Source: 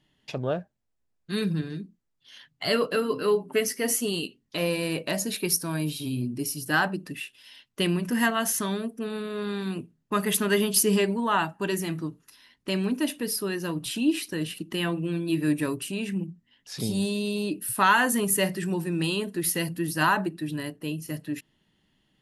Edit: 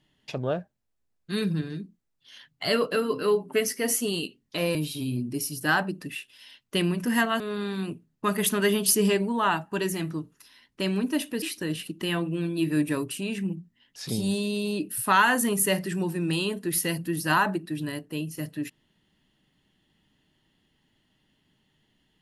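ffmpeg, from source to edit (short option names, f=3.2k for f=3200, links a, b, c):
-filter_complex "[0:a]asplit=4[a][b][c][d];[a]atrim=end=4.752[e];[b]atrim=start=5.798:end=8.452[f];[c]atrim=start=9.278:end=13.302[g];[d]atrim=start=14.128[h];[e][f]acrossfade=d=0.004:c1=hsin:c2=hsin[i];[i][g]acrossfade=d=0.004:c1=hsin:c2=hsin[j];[j][h]acrossfade=d=0.004:c1=hsin:c2=hsin"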